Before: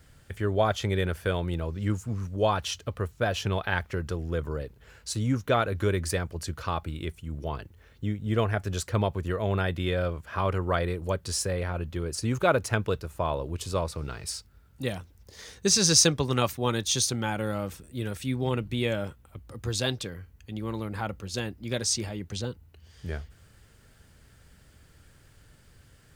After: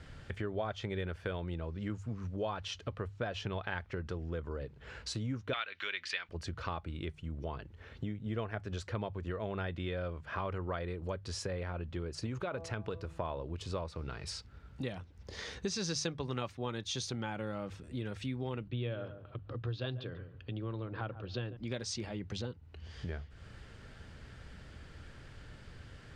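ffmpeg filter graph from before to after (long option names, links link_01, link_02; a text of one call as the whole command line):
ffmpeg -i in.wav -filter_complex "[0:a]asettb=1/sr,asplit=3[link_01][link_02][link_03];[link_01]atrim=end=5.534[link_04];[link_02]atrim=start=5.53:end=6.29,asetpts=PTS-STARTPTS,afade=type=in:duration=0.004:curve=qsin,afade=type=out:start_time=0.756:duration=0.004:curve=qsin,bandpass=frequency=2800:width_type=q:width=1.1,equalizer=frequency=3000:width_type=o:width=3:gain=13[link_05];[link_03]atrim=start=6.286[link_06];[link_04][link_05]acrossfade=duration=0.004:curve1=hsin:curve2=qsin[link_07];[link_07][link_06]acrossfade=duration=0.004:curve1=qsin:curve2=hsin,asettb=1/sr,asplit=3[link_08][link_09][link_10];[link_08]atrim=end=12.264[link_11];[link_09]atrim=start=12.26:end=13.19,asetpts=PTS-STARTPTS,afade=type=in:duration=0.004:curve=qsin,afade=type=out:start_time=0.926:duration=0.004:curve=qsin,bandreject=frequency=165:width_type=h:width=4,bandreject=frequency=330:width_type=h:width=4,bandreject=frequency=495:width_type=h:width=4,bandreject=frequency=660:width_type=h:width=4,bandreject=frequency=825:width_type=h:width=4,bandreject=frequency=990:width_type=h:width=4,bandreject=frequency=1155:width_type=h:width=4,acompressor=threshold=-27dB:ratio=3:attack=3.2:release=140:knee=1:detection=peak[link_12];[link_10]atrim=start=13.186[link_13];[link_11][link_12]acrossfade=duration=0.004:curve1=hsin:curve2=qsin[link_14];[link_14][link_13]acrossfade=duration=0.004:curve1=qsin:curve2=hsin,asettb=1/sr,asplit=3[link_15][link_16][link_17];[link_15]atrim=end=18.684[link_18];[link_16]atrim=start=18.68:end=21.57,asetpts=PTS-STARTPTS,afade=type=in:duration=0.004:curve=qsin,afade=type=out:start_time=2.886:duration=0.004:curve=qsin,highpass=110,equalizer=frequency=120:width_type=q:width=4:gain=9,equalizer=frequency=200:width_type=q:width=4:gain=-9,equalizer=frequency=860:width_type=q:width=4:gain=-7,equalizer=frequency=2100:width_type=q:width=4:gain=-9,lowpass=frequency=3800:width=0.5412,lowpass=frequency=3800:width=1.3066,asplit=2[link_19][link_20];[link_20]adelay=141,lowpass=frequency=1000:poles=1,volume=-14dB,asplit=2[link_21][link_22];[link_22]adelay=141,lowpass=frequency=1000:poles=1,volume=0.16[link_23];[link_19][link_21][link_23]amix=inputs=3:normalize=0,atrim=end_sample=127449[link_24];[link_17]atrim=start=21.566[link_25];[link_18][link_24]acrossfade=duration=0.004:curve1=hsin:curve2=qsin[link_26];[link_26][link_25]acrossfade=duration=0.004:curve1=qsin:curve2=hsin,lowpass=4200,bandreject=frequency=50:width_type=h:width=6,bandreject=frequency=100:width_type=h:width=6,bandreject=frequency=150:width_type=h:width=6,acompressor=threshold=-46dB:ratio=3,volume=6dB" out.wav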